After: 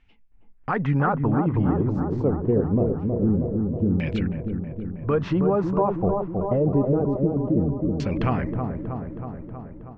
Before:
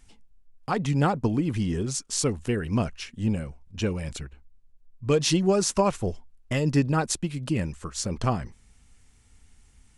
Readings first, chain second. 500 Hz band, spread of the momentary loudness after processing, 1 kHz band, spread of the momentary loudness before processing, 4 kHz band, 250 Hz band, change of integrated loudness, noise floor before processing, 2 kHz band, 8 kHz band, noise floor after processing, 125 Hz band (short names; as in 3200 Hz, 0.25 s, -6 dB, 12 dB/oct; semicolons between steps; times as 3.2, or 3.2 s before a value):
+4.5 dB, 10 LU, +2.5 dB, 12 LU, under -10 dB, +5.0 dB, +3.0 dB, -58 dBFS, -0.5 dB, under -25 dB, -50 dBFS, +4.0 dB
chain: air absorption 79 m; LFO low-pass saw down 0.25 Hz 240–2700 Hz; limiter -17.5 dBFS, peak gain reduction 10.5 dB; dark delay 0.319 s, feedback 68%, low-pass 980 Hz, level -4 dB; AGC gain up to 10 dB; gain -6 dB